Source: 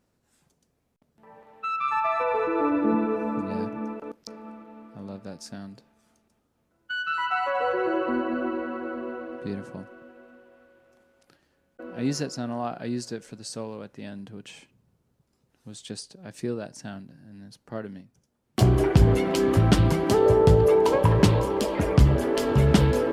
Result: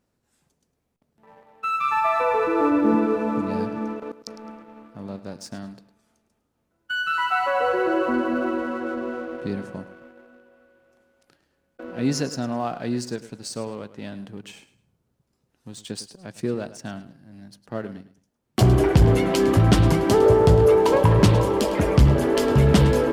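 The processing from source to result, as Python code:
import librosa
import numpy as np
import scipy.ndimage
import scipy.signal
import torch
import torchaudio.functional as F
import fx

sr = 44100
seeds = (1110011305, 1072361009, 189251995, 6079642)

y = fx.leveller(x, sr, passes=1)
y = fx.echo_feedback(y, sr, ms=106, feedback_pct=26, wet_db=-15.0)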